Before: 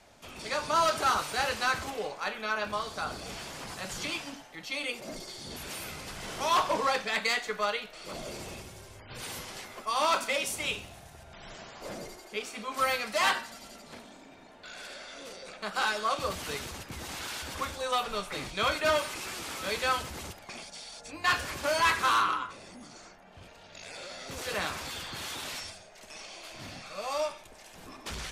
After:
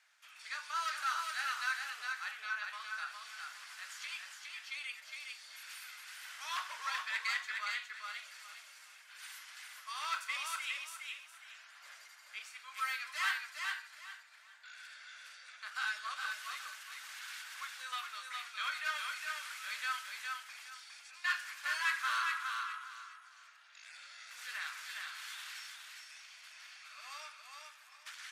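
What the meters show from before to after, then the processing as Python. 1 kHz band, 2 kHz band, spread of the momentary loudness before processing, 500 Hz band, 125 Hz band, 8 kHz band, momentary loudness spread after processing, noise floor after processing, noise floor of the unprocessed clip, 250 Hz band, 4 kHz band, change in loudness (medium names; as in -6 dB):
-11.0 dB, -4.0 dB, 20 LU, -31.0 dB, under -40 dB, -9.0 dB, 17 LU, -59 dBFS, -52 dBFS, under -40 dB, -8.0 dB, -8.5 dB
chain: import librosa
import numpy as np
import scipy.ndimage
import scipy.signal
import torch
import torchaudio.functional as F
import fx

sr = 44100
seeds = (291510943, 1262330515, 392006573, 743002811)

y = fx.ladder_highpass(x, sr, hz=1300.0, resonance_pct=45)
y = fx.echo_feedback(y, sr, ms=411, feedback_pct=26, wet_db=-4.0)
y = F.gain(torch.from_numpy(y), -2.0).numpy()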